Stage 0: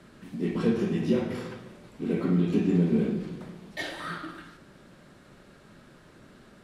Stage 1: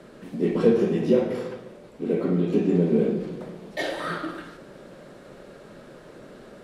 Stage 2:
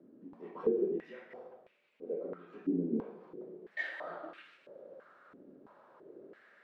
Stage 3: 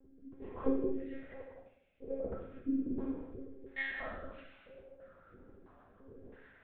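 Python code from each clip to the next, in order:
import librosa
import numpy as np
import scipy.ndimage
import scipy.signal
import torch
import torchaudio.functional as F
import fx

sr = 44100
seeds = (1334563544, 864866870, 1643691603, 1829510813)

y1 = fx.peak_eq(x, sr, hz=84.0, db=-11.5, octaves=0.37)
y1 = fx.rider(y1, sr, range_db=4, speed_s=2.0)
y1 = fx.peak_eq(y1, sr, hz=510.0, db=10.5, octaves=1.1)
y2 = fx.rider(y1, sr, range_db=4, speed_s=2.0)
y2 = fx.filter_held_bandpass(y2, sr, hz=3.0, low_hz=280.0, high_hz=2500.0)
y2 = F.gain(torch.from_numpy(y2), -5.5).numpy()
y3 = fx.lpc_monotone(y2, sr, seeds[0], pitch_hz=270.0, order=10)
y3 = fx.rev_gated(y3, sr, seeds[1], gate_ms=360, shape='falling', drr_db=2.0)
y3 = fx.rotary(y3, sr, hz=1.2)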